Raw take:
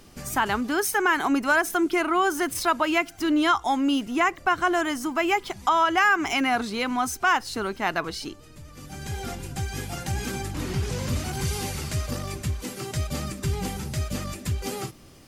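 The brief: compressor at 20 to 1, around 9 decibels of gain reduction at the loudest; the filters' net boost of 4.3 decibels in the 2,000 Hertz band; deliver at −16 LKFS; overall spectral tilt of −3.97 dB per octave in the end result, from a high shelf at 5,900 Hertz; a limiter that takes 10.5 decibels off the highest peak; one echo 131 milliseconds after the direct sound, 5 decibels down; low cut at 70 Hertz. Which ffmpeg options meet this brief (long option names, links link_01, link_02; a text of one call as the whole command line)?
ffmpeg -i in.wav -af "highpass=70,equalizer=frequency=2000:width_type=o:gain=5,highshelf=frequency=5900:gain=6.5,acompressor=threshold=-22dB:ratio=20,alimiter=limit=-22dB:level=0:latency=1,aecho=1:1:131:0.562,volume=14dB" out.wav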